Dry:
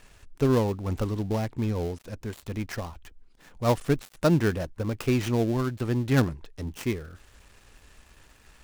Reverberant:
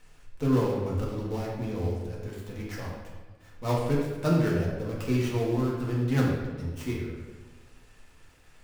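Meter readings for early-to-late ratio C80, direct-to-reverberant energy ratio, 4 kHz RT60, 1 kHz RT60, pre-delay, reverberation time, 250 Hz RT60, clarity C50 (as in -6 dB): 3.5 dB, -5.5 dB, 0.90 s, 1.2 s, 4 ms, 1.3 s, 1.5 s, 1.0 dB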